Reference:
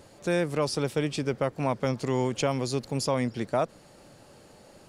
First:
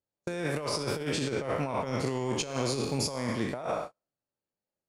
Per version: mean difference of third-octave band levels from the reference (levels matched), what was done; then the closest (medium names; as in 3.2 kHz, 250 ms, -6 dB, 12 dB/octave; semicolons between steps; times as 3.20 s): 10.0 dB: spectral sustain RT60 0.82 s; on a send: band-passed feedback delay 66 ms, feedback 45%, band-pass 1.4 kHz, level -5 dB; on the sum: gate -33 dBFS, range -43 dB; compressor with a negative ratio -27 dBFS, ratio -0.5; trim -3.5 dB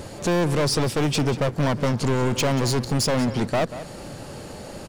6.5 dB: bass shelf 200 Hz +5.5 dB; in parallel at +1 dB: compression, threshold -34 dBFS, peak gain reduction 14 dB; on the sum: hard clipper -26.5 dBFS, distortion -5 dB; echo from a far wall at 32 m, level -13 dB; trim +7.5 dB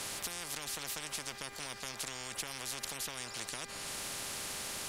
16.5 dB: compression 2.5:1, threshold -40 dBFS, peak gain reduction 12.5 dB; mains buzz 400 Hz, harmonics 6, -52 dBFS; spectrum-flattening compressor 10:1; trim +3 dB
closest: second